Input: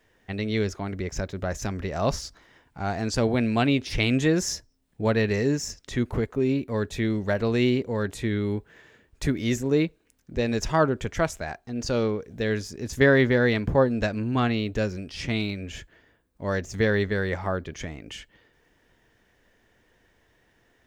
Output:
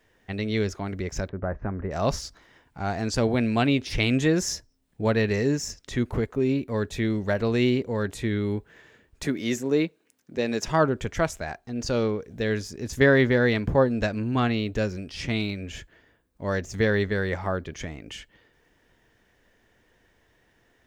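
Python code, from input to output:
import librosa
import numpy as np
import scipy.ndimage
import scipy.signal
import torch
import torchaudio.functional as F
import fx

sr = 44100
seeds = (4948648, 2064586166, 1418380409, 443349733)

y = fx.lowpass(x, sr, hz=1600.0, slope=24, at=(1.29, 1.91))
y = fx.highpass(y, sr, hz=190.0, slope=12, at=(9.23, 10.68))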